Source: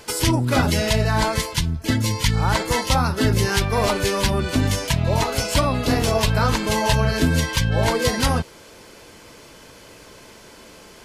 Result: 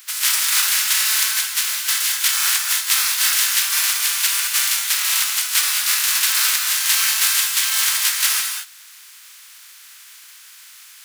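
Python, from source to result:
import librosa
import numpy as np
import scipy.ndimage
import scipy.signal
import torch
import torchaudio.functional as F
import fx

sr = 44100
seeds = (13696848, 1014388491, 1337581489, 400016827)

y = fx.spec_flatten(x, sr, power=0.17)
y = scipy.signal.sosfilt(scipy.signal.butter(4, 1300.0, 'highpass', fs=sr, output='sos'), y)
y = fx.rev_gated(y, sr, seeds[0], gate_ms=240, shape='rising', drr_db=5.0)
y = F.gain(torch.from_numpy(y), 1.0).numpy()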